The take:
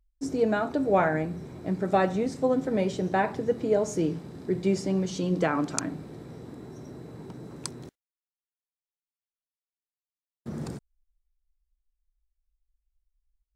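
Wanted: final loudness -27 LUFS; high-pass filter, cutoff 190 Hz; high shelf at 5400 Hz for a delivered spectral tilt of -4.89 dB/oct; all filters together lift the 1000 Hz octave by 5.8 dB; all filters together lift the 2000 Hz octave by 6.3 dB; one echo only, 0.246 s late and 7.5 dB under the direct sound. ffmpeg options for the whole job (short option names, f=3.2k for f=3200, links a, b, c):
-af "highpass=190,equalizer=f=1k:t=o:g=7,equalizer=f=2k:t=o:g=5,highshelf=f=5.4k:g=3,aecho=1:1:246:0.422,volume=-2.5dB"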